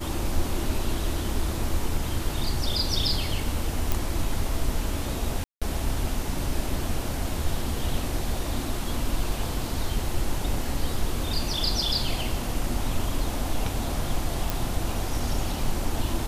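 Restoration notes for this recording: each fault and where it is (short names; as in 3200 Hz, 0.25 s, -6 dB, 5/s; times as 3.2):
3.92 pop
5.44–5.62 gap 0.176 s
14.5 pop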